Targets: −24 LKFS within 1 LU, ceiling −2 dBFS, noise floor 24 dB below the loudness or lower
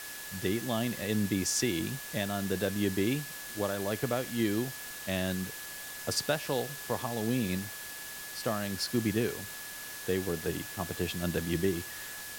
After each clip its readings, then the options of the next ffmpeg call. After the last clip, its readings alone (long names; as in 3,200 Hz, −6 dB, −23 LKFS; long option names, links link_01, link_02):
interfering tone 1,700 Hz; level of the tone −46 dBFS; background noise floor −43 dBFS; target noise floor −57 dBFS; integrated loudness −33.0 LKFS; sample peak −16.0 dBFS; target loudness −24.0 LKFS
→ -af "bandreject=frequency=1700:width=30"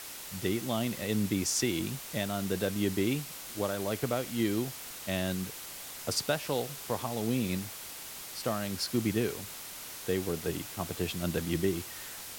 interfering tone none found; background noise floor −44 dBFS; target noise floor −57 dBFS
→ -af "afftdn=noise_reduction=13:noise_floor=-44"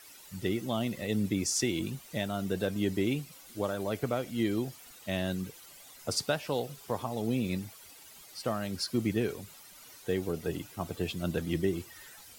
background noise floor −53 dBFS; target noise floor −57 dBFS
→ -af "afftdn=noise_reduction=6:noise_floor=-53"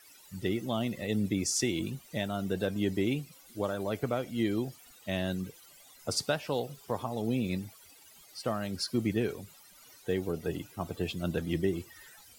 background noise floor −57 dBFS; integrated loudness −33.0 LKFS; sample peak −16.5 dBFS; target loudness −24.0 LKFS
→ -af "volume=9dB"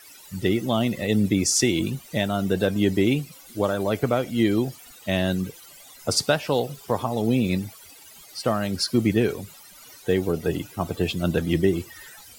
integrated loudness −24.0 LKFS; sample peak −7.5 dBFS; background noise floor −48 dBFS